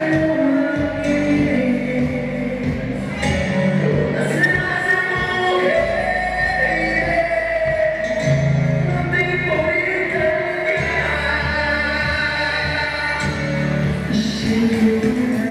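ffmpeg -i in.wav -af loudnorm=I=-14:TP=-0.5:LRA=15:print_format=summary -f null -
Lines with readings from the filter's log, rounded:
Input Integrated:    -18.4 LUFS
Input True Peak:      -8.0 dBTP
Input LRA:             1.3 LU
Input Threshold:     -28.4 LUFS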